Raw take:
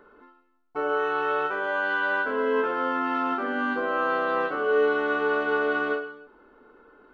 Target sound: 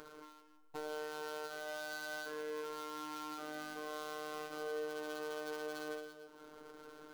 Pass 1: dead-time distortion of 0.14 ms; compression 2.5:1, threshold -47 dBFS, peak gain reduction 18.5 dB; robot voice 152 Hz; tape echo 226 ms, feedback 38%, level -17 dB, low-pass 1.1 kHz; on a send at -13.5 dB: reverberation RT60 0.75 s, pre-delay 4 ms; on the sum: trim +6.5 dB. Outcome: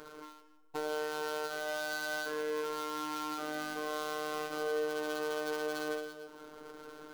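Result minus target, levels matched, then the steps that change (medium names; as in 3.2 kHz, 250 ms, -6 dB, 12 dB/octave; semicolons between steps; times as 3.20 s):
compression: peak gain reduction -7 dB
change: compression 2.5:1, threshold -58.5 dBFS, peak gain reduction 25 dB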